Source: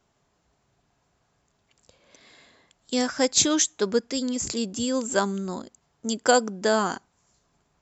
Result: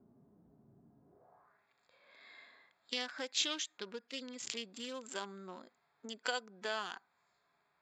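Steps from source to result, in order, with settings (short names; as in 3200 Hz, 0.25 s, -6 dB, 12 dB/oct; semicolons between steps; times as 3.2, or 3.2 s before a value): Wiener smoothing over 15 samples; harmonic-percussive split percussive -13 dB; compressor 4:1, threshold -37 dBFS, peak gain reduction 17.5 dB; band-pass sweep 240 Hz -> 2900 Hz, 1.02–1.69; gain +17.5 dB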